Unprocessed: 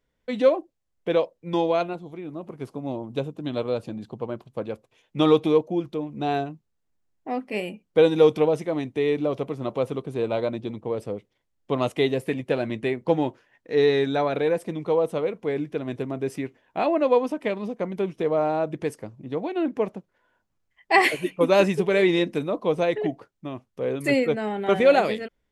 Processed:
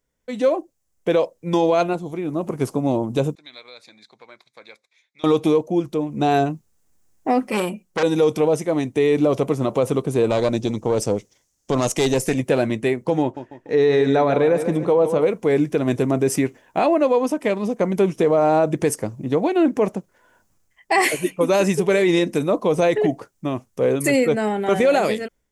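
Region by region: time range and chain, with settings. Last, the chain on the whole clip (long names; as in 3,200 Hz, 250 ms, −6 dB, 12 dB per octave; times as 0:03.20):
0:03.35–0:05.24: downward compressor 2.5 to 1, threshold −29 dBFS + pair of resonant band-passes 2,900 Hz, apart 0.78 octaves
0:07.42–0:08.03: comb filter 5.5 ms, depth 50% + saturating transformer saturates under 2,300 Hz
0:10.30–0:12.38: parametric band 6,000 Hz +11.5 dB 0.88 octaves + tube saturation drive 17 dB, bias 0.55
0:13.22–0:15.23: low-pass filter 2,700 Hz 6 dB per octave + repeating echo 146 ms, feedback 40%, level −12 dB
whole clip: high shelf with overshoot 5,000 Hz +7.5 dB, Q 1.5; automatic gain control gain up to 15.5 dB; boost into a limiter +6.5 dB; level −8 dB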